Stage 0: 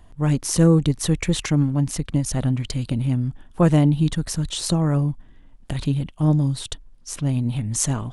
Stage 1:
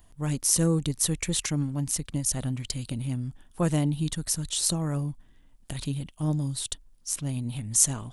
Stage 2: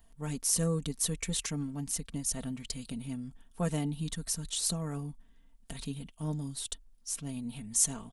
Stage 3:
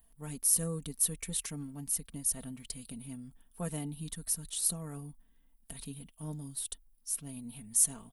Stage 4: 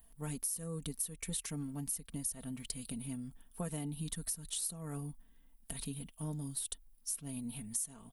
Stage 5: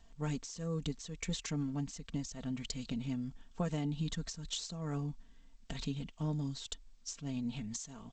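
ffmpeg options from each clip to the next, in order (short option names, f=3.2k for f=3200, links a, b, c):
-af "aemphasis=mode=production:type=75kf,volume=-9dB"
-af "aecho=1:1:4.4:0.66,volume=-7dB"
-af "aexciter=amount=6:drive=3:freq=9.4k,volume=-6dB"
-af "acompressor=threshold=-38dB:ratio=10,volume=3dB"
-af "volume=4.5dB" -ar 16000 -c:a g722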